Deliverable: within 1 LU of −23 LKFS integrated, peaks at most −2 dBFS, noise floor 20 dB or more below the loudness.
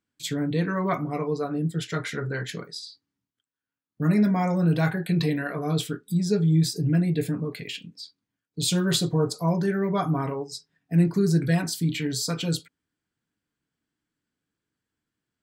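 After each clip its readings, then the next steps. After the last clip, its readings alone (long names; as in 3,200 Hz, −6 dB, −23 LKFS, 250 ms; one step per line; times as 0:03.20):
integrated loudness −25.5 LKFS; sample peak −11.0 dBFS; target loudness −23.0 LKFS
→ level +2.5 dB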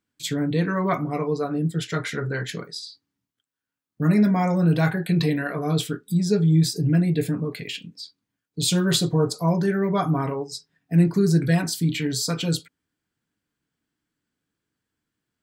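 integrated loudness −23.0 LKFS; sample peak −8.5 dBFS; background noise floor −85 dBFS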